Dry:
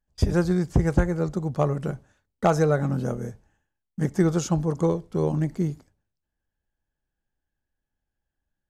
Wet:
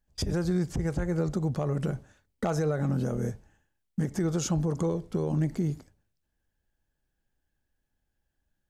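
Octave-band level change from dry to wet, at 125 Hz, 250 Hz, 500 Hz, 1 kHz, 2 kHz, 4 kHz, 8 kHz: -4.0, -4.0, -6.5, -9.0, -7.0, 0.0, -0.5 dB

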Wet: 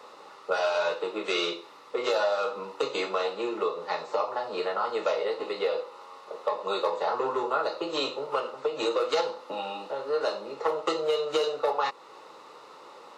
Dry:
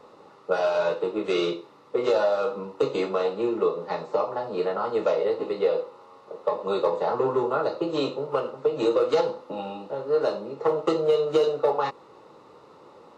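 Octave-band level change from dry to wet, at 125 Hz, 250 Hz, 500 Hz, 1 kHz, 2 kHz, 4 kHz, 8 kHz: under -10 dB, -7.5 dB, -5.0 dB, 0.0 dB, +2.5 dB, +4.0 dB, n/a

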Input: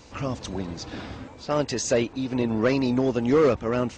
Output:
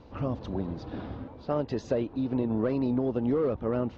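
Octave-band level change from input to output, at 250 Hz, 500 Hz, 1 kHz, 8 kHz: -3.5 dB, -6.0 dB, -7.0 dB, under -25 dB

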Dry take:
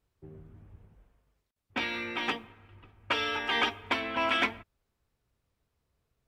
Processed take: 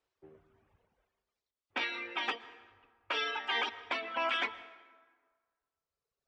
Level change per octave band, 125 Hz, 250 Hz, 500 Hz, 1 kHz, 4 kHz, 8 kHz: under -20 dB, -11.5 dB, -5.0 dB, -4.0 dB, -3.5 dB, -6.5 dB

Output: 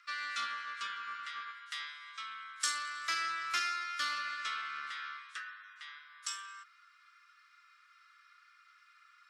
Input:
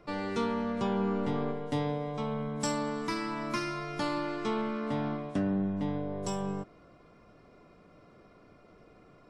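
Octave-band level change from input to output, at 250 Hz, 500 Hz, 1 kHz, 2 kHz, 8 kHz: -37.5, -32.0, -3.0, +4.5, +3.0 dB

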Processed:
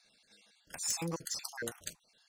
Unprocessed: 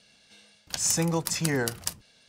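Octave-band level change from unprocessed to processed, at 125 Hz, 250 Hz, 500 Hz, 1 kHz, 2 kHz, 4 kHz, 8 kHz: -15.5, -14.0, -13.0, -11.0, -10.5, -9.0, -9.5 dB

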